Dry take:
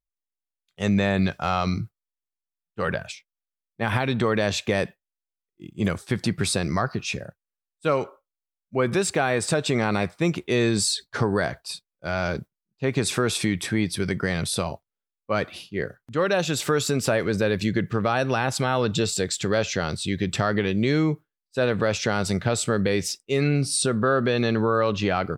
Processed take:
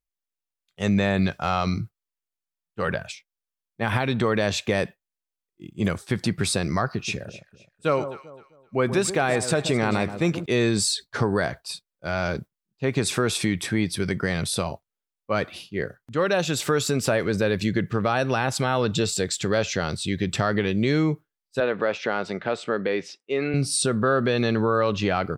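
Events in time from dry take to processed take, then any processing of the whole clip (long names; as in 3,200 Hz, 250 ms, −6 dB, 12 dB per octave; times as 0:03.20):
0:06.94–0:10.46: delay that swaps between a low-pass and a high-pass 130 ms, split 1,100 Hz, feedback 51%, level −10 dB
0:21.60–0:23.54: band-pass filter 290–2,800 Hz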